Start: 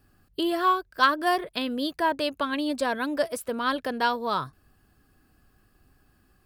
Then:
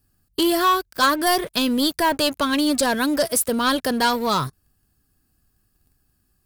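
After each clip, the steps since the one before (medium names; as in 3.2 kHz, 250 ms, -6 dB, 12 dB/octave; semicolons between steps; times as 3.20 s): tone controls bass +7 dB, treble +14 dB; waveshaping leveller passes 3; trim -5 dB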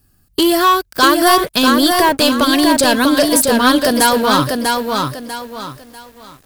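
in parallel at -2 dB: compression, threshold -29 dBFS, peak gain reduction 13.5 dB; on the sum: bit-crushed delay 644 ms, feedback 35%, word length 8-bit, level -3.5 dB; trim +4.5 dB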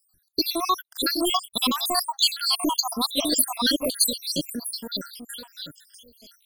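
random holes in the spectrogram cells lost 78%; ten-band graphic EQ 125 Hz -4 dB, 500 Hz -4 dB, 2 kHz -6 dB, 4 kHz +8 dB, 8 kHz +4 dB, 16 kHz +7 dB; trim -7 dB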